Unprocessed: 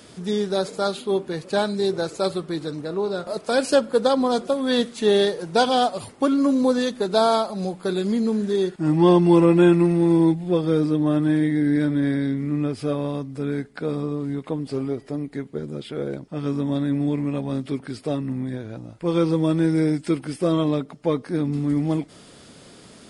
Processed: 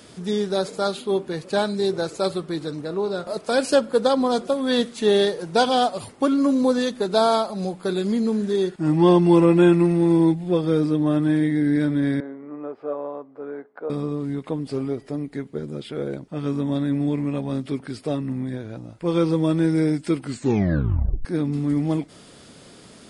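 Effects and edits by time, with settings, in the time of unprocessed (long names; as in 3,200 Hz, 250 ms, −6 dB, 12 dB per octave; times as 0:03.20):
0:12.20–0:13.90: flat-topped band-pass 740 Hz, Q 0.87
0:16.02–0:16.71: notch filter 5,200 Hz
0:20.21: tape stop 1.04 s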